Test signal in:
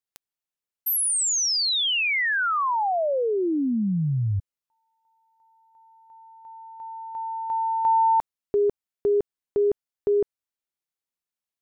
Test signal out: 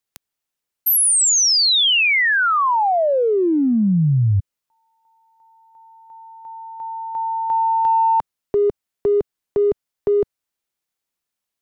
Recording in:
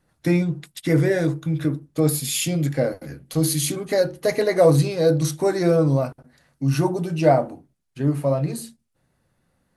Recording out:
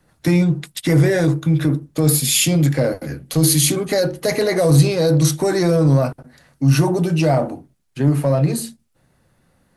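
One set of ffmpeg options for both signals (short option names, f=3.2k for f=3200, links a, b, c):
-filter_complex "[0:a]acrossover=split=150|3400[a][b][c];[b]acompressor=threshold=-22dB:ratio=6:attack=0.57:release=28:knee=2.83:detection=peak[d];[a][d][c]amix=inputs=3:normalize=0,volume=8dB"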